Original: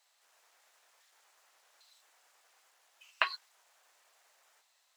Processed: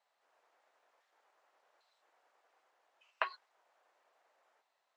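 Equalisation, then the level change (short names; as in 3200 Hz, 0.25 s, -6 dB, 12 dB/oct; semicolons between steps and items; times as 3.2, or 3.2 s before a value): band-pass 360 Hz, Q 0.53; +2.0 dB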